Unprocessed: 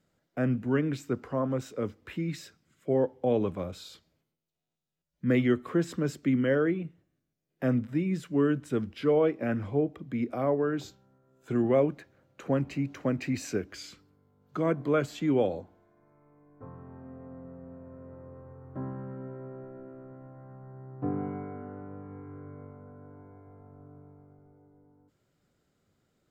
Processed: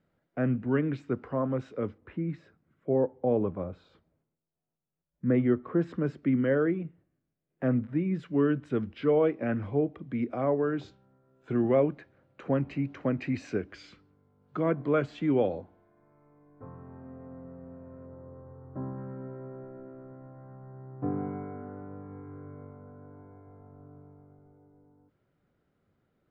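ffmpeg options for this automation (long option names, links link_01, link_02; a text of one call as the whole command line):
ffmpeg -i in.wav -af "asetnsamples=nb_out_samples=441:pad=0,asendcmd='1.98 lowpass f 1300;5.81 lowpass f 2000;8.19 lowpass f 3000;18.06 lowpass f 1400;18.98 lowpass f 2300',lowpass=2500" out.wav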